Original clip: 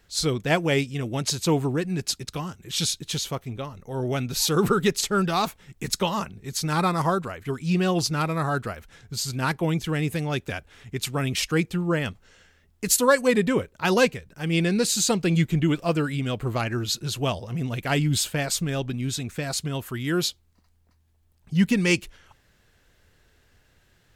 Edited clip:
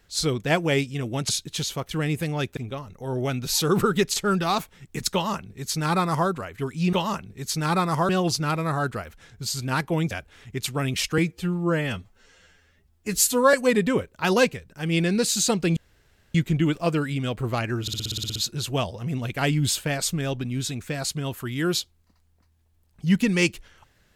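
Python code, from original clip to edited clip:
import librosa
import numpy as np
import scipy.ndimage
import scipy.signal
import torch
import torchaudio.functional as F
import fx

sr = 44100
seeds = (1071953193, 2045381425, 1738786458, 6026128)

y = fx.edit(x, sr, fx.cut(start_s=1.29, length_s=1.55),
    fx.duplicate(start_s=6.0, length_s=1.16, to_s=7.8),
    fx.move(start_s=9.82, length_s=0.68, to_s=3.44),
    fx.stretch_span(start_s=11.57, length_s=1.57, factor=1.5),
    fx.insert_room_tone(at_s=15.37, length_s=0.58),
    fx.stutter(start_s=16.84, slice_s=0.06, count=10), tone=tone)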